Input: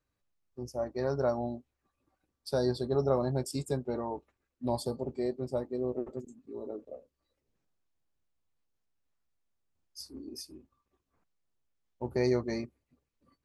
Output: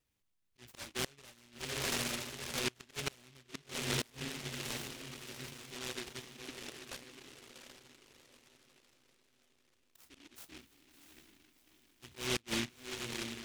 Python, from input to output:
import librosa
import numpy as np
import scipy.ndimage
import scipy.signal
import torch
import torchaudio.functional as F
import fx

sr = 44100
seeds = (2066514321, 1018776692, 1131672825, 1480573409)

y = fx.auto_swell(x, sr, attack_ms=432.0)
y = fx.comb_fb(y, sr, f0_hz=72.0, decay_s=1.5, harmonics='all', damping=0.0, mix_pct=70, at=(4.1, 6.4))
y = fx.env_lowpass_down(y, sr, base_hz=750.0, full_db=-30.0)
y = fx.echo_diffused(y, sr, ms=691, feedback_pct=44, wet_db=-6.0)
y = fx.gate_flip(y, sr, shuts_db=-25.0, range_db=-29)
y = fx.low_shelf(y, sr, hz=200.0, db=-4.5)
y = fx.noise_mod_delay(y, sr, seeds[0], noise_hz=2600.0, depth_ms=0.46)
y = F.gain(torch.from_numpy(y), 2.5).numpy()